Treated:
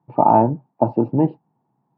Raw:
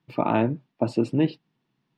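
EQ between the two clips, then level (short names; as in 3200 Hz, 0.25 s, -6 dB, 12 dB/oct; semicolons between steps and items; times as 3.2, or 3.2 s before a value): HPF 86 Hz; synth low-pass 850 Hz, resonance Q 5.3; low shelf 160 Hz +8 dB; +1.0 dB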